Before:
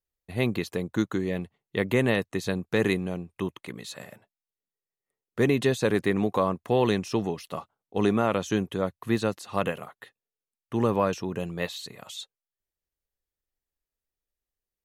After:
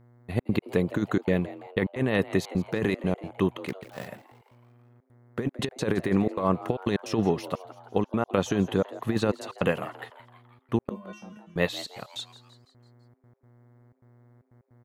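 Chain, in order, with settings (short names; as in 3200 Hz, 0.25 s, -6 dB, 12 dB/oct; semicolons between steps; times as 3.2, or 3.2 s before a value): 3.68–4.08 switching dead time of 0.17 ms; bell 10000 Hz -7 dB 2.4 oct; negative-ratio compressor -26 dBFS, ratio -0.5; buzz 120 Hz, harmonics 18, -60 dBFS -8 dB/oct; step gate "xxxx.x.xxxxx." 153 bpm -60 dB; 10.89–11.56 resonator 210 Hz, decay 0.32 s, harmonics odd, mix 100%; frequency-shifting echo 0.167 s, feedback 53%, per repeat +140 Hz, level -17 dB; gain +3.5 dB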